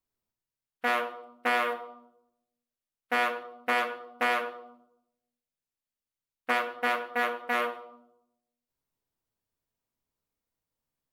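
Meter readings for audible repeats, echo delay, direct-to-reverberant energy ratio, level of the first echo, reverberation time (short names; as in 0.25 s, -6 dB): none, none, 5.5 dB, none, 0.85 s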